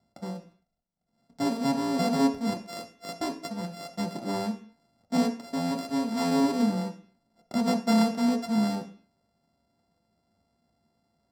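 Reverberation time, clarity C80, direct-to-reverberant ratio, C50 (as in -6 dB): 0.45 s, 16.0 dB, 2.5 dB, 11.0 dB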